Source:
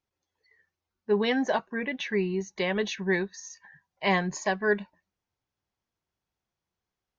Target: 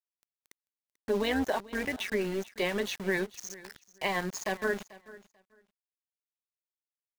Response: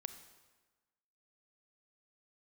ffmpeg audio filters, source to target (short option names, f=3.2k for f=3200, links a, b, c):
-filter_complex "[0:a]acrossover=split=190|1100[a][b][c];[a]acompressor=threshold=-47dB:ratio=10[d];[d][b][c]amix=inputs=3:normalize=0,alimiter=limit=-19dB:level=0:latency=1:release=36,acompressor=mode=upward:threshold=-31dB:ratio=2.5,aeval=exprs='val(0)*gte(abs(val(0)),0.0141)':c=same,tremolo=f=190:d=0.571,aecho=1:1:440|880:0.106|0.0191,volume=1.5dB"